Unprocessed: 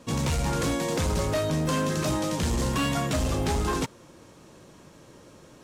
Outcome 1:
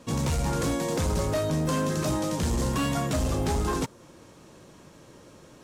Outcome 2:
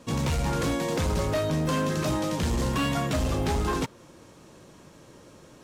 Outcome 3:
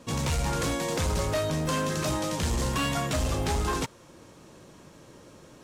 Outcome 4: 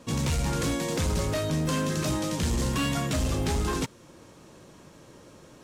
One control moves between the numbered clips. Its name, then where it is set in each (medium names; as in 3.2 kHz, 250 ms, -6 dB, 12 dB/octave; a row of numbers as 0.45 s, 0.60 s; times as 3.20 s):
dynamic bell, frequency: 2.7 kHz, 8.2 kHz, 240 Hz, 790 Hz